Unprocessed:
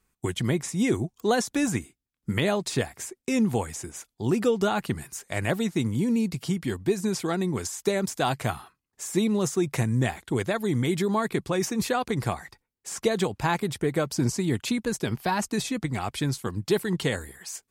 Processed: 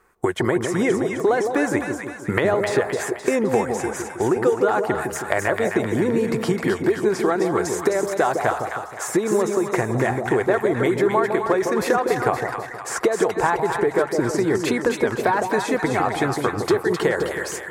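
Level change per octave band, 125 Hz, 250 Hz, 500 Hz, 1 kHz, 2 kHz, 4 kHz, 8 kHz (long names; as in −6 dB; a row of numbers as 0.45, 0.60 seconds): −1.0, +3.0, +9.0, +8.5, +8.5, −0.5, +1.5 decibels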